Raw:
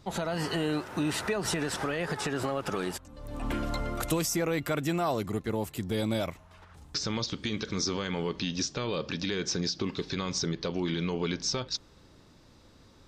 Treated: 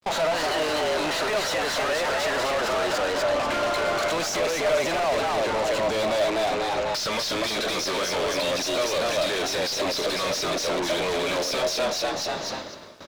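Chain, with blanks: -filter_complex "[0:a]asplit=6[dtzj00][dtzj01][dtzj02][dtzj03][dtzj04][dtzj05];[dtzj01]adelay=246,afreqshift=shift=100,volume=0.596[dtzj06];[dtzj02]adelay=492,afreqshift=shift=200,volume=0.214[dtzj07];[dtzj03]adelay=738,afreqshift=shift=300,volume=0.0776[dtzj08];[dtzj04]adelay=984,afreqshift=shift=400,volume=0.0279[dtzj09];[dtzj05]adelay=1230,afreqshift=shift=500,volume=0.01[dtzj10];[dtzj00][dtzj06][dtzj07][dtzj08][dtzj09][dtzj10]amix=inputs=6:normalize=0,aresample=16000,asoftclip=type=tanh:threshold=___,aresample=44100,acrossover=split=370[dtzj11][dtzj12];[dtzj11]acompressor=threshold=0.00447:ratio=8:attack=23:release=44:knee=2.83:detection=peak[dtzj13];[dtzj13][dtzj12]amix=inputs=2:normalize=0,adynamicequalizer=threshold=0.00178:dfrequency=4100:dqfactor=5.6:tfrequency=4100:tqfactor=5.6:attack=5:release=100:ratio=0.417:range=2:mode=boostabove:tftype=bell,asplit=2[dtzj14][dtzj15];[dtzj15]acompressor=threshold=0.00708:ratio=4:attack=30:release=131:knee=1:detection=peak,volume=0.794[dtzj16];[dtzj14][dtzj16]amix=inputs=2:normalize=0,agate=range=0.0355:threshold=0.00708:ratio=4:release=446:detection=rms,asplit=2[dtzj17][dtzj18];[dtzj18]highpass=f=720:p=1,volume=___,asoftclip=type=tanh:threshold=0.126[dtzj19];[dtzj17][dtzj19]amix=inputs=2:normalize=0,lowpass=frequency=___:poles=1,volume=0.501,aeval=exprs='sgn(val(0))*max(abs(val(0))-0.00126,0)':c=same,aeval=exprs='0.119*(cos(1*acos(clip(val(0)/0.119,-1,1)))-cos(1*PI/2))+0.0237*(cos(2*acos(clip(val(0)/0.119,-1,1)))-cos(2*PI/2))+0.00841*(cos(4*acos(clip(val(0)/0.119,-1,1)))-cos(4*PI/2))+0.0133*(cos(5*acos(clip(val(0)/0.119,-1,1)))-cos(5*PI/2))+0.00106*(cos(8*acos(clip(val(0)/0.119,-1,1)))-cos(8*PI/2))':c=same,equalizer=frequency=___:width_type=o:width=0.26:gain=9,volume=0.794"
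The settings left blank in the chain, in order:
0.0501, 31.6, 3400, 610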